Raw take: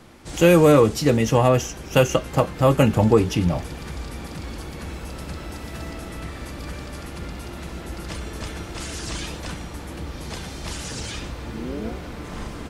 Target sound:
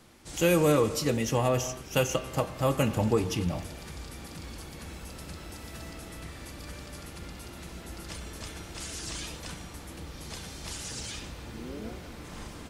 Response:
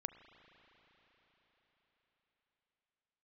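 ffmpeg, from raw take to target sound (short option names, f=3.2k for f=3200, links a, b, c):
-filter_complex "[0:a]highshelf=f=3.4k:g=8[a];[1:a]atrim=start_sample=2205,afade=t=out:st=0.33:d=0.01,atrim=end_sample=14994[b];[a][b]afir=irnorm=-1:irlink=0,volume=-6.5dB"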